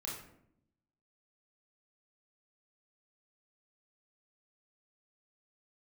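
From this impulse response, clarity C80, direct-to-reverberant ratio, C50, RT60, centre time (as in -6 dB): 7.0 dB, -4.0 dB, 3.0 dB, 0.70 s, 46 ms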